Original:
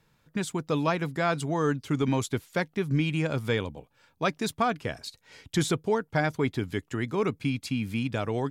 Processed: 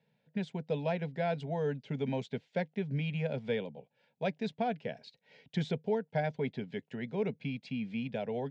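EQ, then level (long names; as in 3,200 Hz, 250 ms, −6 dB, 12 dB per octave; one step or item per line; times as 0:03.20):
band-pass filter 140–3,200 Hz
high-frequency loss of the air 100 metres
phaser with its sweep stopped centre 320 Hz, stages 6
−2.5 dB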